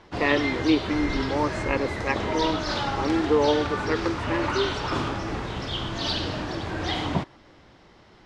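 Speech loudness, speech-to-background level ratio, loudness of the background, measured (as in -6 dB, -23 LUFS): -26.5 LUFS, 2.0 dB, -28.5 LUFS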